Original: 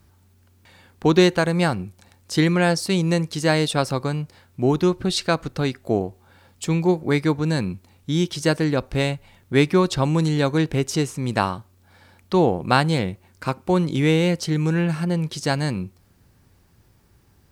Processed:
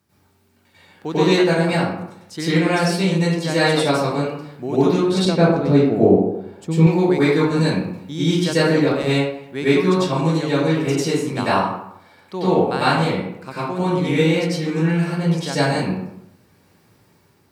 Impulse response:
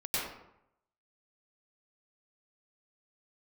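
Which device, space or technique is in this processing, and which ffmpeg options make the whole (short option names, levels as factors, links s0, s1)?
far laptop microphone: -filter_complex "[1:a]atrim=start_sample=2205[s0];[0:a][s0]afir=irnorm=-1:irlink=0,highpass=150,dynaudnorm=f=300:g=5:m=1.58,asettb=1/sr,asplit=3[s1][s2][s3];[s1]atrim=end=5.254[s4];[s2]atrim=start=5.25:end=6.87,asetpts=PTS-STARTPTS,afade=t=in:d=0.004:c=qsin,afade=t=out:st=1.616:d=0.004:c=qsin,tiltshelf=f=900:g=7.5[s5];[s3]atrim=start=6.866[s6];[s4][s5]acrossfade=d=0.004:c1=hsin:c2=qsin[s7];[s7][s6]acrossfade=d=0.004:c1=qsin:c2=hsin,volume=0.708"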